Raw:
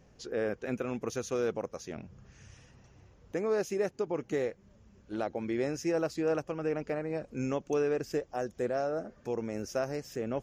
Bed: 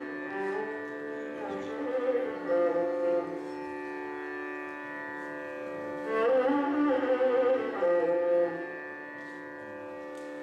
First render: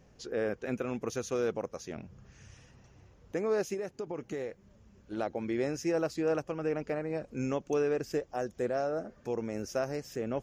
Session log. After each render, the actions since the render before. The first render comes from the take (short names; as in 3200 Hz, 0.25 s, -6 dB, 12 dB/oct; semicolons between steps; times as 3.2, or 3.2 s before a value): 3.74–5.17 compressor 4:1, threshold -33 dBFS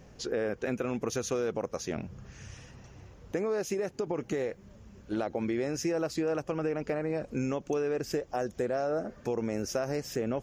in parallel at +2.5 dB: limiter -27.5 dBFS, peak gain reduction 7 dB; on the sum: compressor, threshold -27 dBFS, peak gain reduction 6.5 dB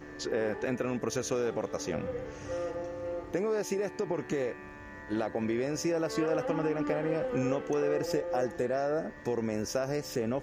add bed -8.5 dB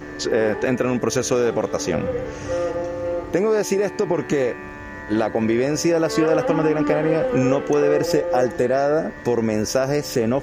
gain +11.5 dB